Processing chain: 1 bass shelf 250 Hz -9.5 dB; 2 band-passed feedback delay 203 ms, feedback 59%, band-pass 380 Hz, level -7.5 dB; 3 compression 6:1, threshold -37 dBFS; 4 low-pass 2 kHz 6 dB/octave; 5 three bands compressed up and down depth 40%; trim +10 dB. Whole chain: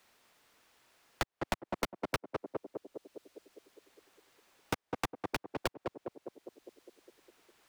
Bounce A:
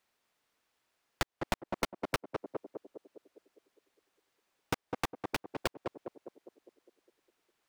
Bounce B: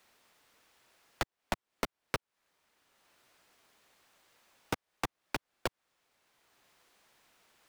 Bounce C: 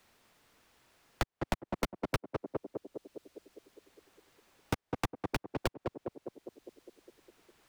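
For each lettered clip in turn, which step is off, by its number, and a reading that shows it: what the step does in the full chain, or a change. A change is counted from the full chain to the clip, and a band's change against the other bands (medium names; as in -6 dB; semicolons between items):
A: 5, momentary loudness spread change -3 LU; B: 2, momentary loudness spread change -14 LU; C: 1, 125 Hz band +6.5 dB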